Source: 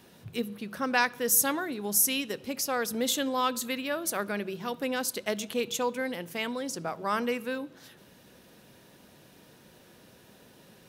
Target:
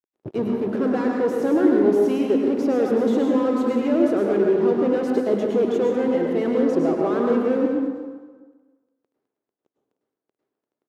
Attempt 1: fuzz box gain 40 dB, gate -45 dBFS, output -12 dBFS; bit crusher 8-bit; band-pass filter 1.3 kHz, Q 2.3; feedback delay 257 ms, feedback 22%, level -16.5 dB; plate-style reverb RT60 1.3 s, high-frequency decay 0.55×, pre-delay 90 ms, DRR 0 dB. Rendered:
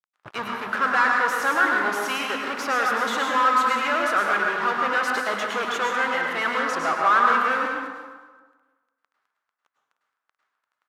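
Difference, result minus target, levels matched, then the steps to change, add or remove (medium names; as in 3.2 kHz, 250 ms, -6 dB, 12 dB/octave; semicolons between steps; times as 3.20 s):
1 kHz band +12.5 dB
change: band-pass filter 370 Hz, Q 2.3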